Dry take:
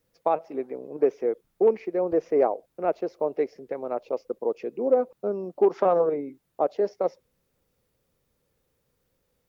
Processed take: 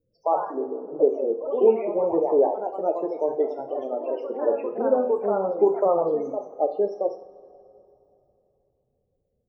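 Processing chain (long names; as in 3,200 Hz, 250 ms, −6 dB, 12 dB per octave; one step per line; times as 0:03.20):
spectral peaks only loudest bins 16
delay with pitch and tempo change per echo 90 ms, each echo +2 semitones, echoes 3, each echo −6 dB
coupled-rooms reverb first 0.49 s, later 3.1 s, from −19 dB, DRR 4.5 dB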